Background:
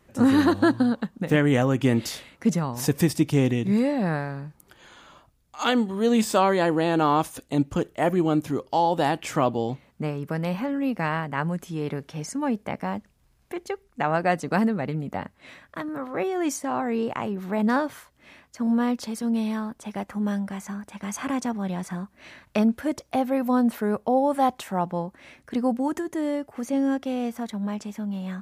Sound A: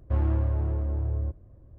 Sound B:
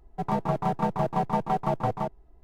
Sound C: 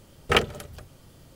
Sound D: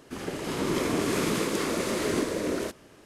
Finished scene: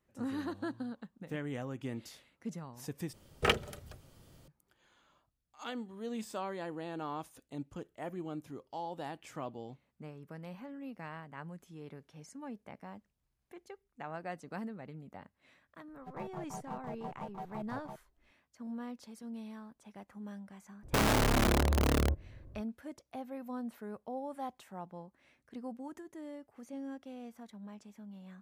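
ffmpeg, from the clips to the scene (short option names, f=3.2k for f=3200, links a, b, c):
-filter_complex "[0:a]volume=-19dB[a];[1:a]aeval=exprs='(mod(13.3*val(0)+1,2)-1)/13.3':c=same[b];[a]asplit=2[c][d];[c]atrim=end=3.134[e];[3:a]atrim=end=1.35,asetpts=PTS-STARTPTS,volume=-7.5dB[f];[d]atrim=start=4.476[g];[2:a]atrim=end=2.43,asetpts=PTS-STARTPTS,volume=-18dB,afade=t=in:d=0.004:c=hsin,afade=t=out:st=2.426:d=0.004:c=hsin,adelay=700308S[h];[b]atrim=end=1.78,asetpts=PTS-STARTPTS,volume=-0.5dB,afade=t=in:d=0.004:c=hsin,afade=t=out:st=1.776:d=0.004:c=hsin,adelay=20830[i];[e][f]acrossfade=d=0.004:c1=hsin:c2=hsin[j];[j][g]acrossfade=d=0.004:c1=hsin:c2=hsin[k];[k][h][i]amix=inputs=3:normalize=0"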